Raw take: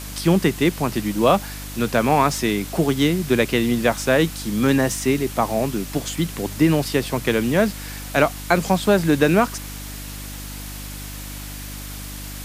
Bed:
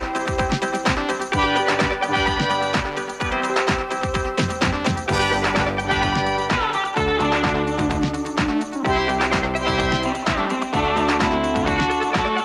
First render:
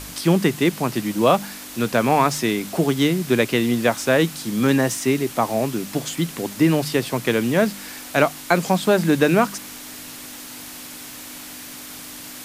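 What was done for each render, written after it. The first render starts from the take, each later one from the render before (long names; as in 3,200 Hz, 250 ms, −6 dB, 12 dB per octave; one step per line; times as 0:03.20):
hum removal 50 Hz, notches 4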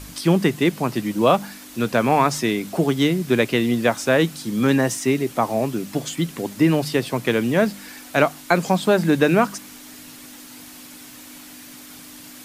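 broadband denoise 6 dB, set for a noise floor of −37 dBFS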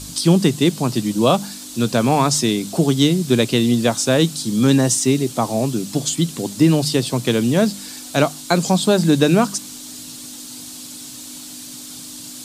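octave-band graphic EQ 125/250/2,000/4,000/8,000 Hz +6/+3/−7/+8/+10 dB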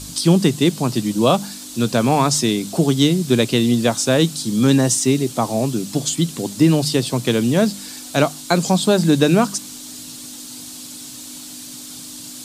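no processing that can be heard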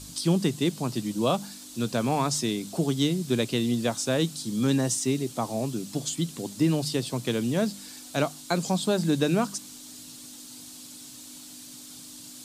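level −9.5 dB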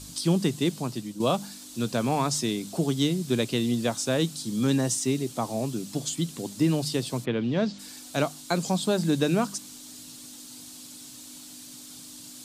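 0:00.74–0:01.20: fade out, to −9 dB
0:07.24–0:07.78: low-pass filter 2,600 Hz → 6,400 Hz 24 dB per octave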